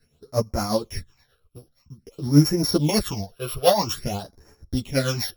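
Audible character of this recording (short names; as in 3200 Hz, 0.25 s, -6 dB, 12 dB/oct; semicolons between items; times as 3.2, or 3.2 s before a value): a buzz of ramps at a fixed pitch in blocks of 8 samples; phasing stages 8, 0.5 Hz, lowest notch 240–3400 Hz; tremolo triangle 8.5 Hz, depth 65%; a shimmering, thickened sound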